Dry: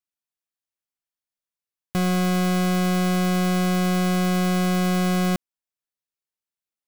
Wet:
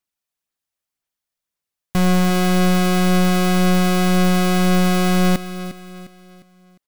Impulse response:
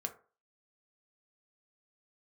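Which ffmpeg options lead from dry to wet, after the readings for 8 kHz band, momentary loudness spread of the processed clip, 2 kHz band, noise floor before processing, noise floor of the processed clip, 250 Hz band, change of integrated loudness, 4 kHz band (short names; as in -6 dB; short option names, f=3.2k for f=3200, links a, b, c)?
+5.5 dB, 9 LU, +5.5 dB, under -85 dBFS, under -85 dBFS, +4.5 dB, +5.0 dB, +6.0 dB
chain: -af "aphaser=in_gain=1:out_gain=1:delay=1.7:decay=0.27:speed=1.9:type=sinusoidal,aecho=1:1:354|708|1062|1416:0.2|0.0798|0.0319|0.0128,aeval=exprs='clip(val(0),-1,0.0531)':c=same,volume=6dB"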